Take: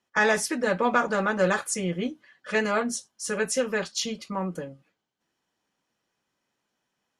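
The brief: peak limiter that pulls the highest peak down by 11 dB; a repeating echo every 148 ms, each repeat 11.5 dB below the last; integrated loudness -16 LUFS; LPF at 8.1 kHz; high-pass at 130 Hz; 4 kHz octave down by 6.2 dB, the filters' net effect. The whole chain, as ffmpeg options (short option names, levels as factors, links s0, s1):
-af "highpass=130,lowpass=8100,equalizer=f=4000:t=o:g=-8.5,alimiter=limit=0.106:level=0:latency=1,aecho=1:1:148|296|444:0.266|0.0718|0.0194,volume=5.31"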